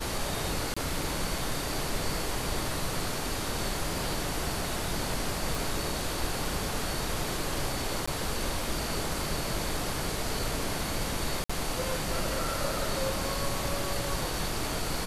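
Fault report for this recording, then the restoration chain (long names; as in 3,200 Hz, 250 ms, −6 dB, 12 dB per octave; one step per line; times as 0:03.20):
0:00.74–0:00.77: drop-out 25 ms
0:05.55: click
0:08.06–0:08.07: drop-out 15 ms
0:11.44–0:11.49: drop-out 55 ms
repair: click removal
repair the gap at 0:00.74, 25 ms
repair the gap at 0:08.06, 15 ms
repair the gap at 0:11.44, 55 ms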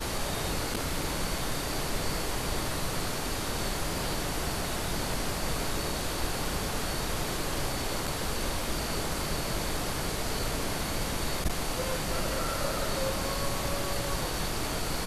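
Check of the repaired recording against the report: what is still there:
none of them is left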